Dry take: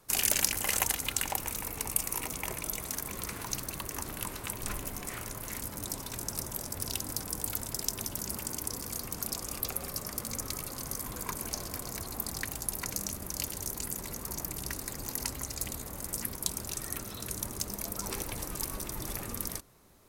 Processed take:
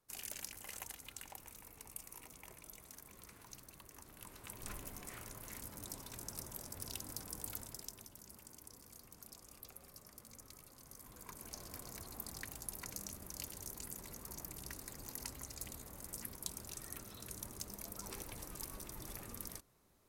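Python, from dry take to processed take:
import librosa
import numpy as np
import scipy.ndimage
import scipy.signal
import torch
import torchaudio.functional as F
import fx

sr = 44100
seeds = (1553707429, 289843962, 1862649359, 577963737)

y = fx.gain(x, sr, db=fx.line((4.08, -19.0), (4.68, -10.5), (7.57, -10.5), (8.11, -20.0), (10.81, -20.0), (11.75, -11.0)))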